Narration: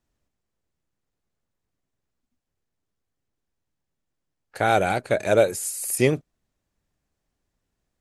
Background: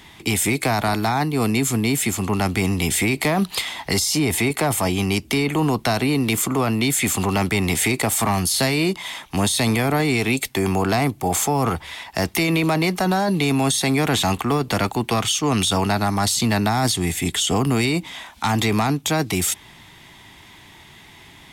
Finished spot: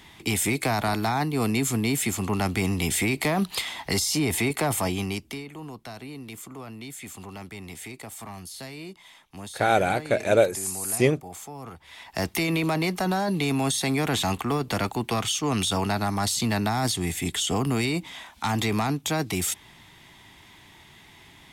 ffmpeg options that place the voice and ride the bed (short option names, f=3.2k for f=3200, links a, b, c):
-filter_complex "[0:a]adelay=5000,volume=-1dB[a];[1:a]volume=9.5dB,afade=t=out:st=4.79:d=0.67:silence=0.177828,afade=t=in:st=11.79:d=0.4:silence=0.199526[b];[a][b]amix=inputs=2:normalize=0"